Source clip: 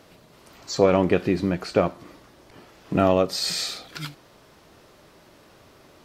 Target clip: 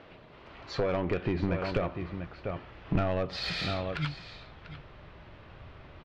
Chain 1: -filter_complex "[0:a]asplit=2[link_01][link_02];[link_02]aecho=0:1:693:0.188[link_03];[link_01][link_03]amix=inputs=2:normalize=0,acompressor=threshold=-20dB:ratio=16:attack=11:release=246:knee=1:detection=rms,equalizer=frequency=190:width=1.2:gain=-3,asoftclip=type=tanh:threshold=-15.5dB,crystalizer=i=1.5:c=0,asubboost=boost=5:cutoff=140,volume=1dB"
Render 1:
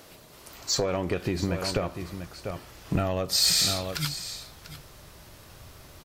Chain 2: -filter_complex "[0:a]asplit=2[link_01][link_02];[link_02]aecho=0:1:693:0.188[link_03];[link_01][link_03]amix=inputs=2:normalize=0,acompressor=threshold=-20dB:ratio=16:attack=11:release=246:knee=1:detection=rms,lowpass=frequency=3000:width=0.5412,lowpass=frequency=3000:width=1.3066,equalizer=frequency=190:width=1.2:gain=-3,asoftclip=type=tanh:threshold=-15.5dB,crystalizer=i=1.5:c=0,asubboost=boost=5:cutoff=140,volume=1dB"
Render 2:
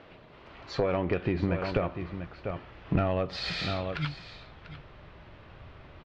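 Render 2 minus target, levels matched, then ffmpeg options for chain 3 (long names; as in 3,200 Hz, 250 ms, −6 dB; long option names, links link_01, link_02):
soft clipping: distortion −7 dB
-filter_complex "[0:a]asplit=2[link_01][link_02];[link_02]aecho=0:1:693:0.188[link_03];[link_01][link_03]amix=inputs=2:normalize=0,acompressor=threshold=-20dB:ratio=16:attack=11:release=246:knee=1:detection=rms,lowpass=frequency=3000:width=0.5412,lowpass=frequency=3000:width=1.3066,equalizer=frequency=190:width=1.2:gain=-3,asoftclip=type=tanh:threshold=-21.5dB,crystalizer=i=1.5:c=0,asubboost=boost=5:cutoff=140,volume=1dB"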